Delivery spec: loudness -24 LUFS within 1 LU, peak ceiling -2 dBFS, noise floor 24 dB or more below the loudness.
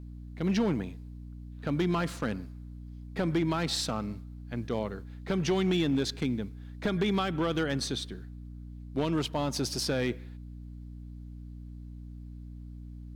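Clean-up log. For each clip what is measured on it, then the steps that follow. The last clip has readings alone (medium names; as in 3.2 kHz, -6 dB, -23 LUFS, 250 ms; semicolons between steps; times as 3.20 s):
clipped samples 0.7%; clipping level -21.0 dBFS; hum 60 Hz; highest harmonic 300 Hz; hum level -41 dBFS; loudness -31.0 LUFS; peak level -21.0 dBFS; loudness target -24.0 LUFS
-> clip repair -21 dBFS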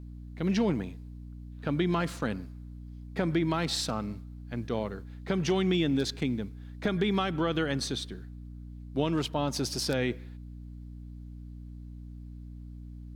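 clipped samples 0.0%; hum 60 Hz; highest harmonic 240 Hz; hum level -41 dBFS
-> de-hum 60 Hz, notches 4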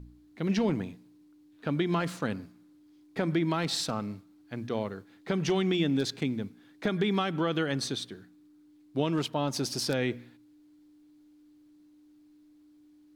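hum not found; loudness -31.0 LUFS; peak level -13.5 dBFS; loudness target -24.0 LUFS
-> trim +7 dB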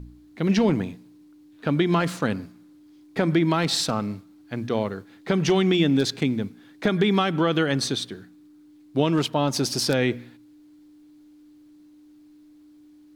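loudness -24.0 LUFS; peak level -6.5 dBFS; noise floor -52 dBFS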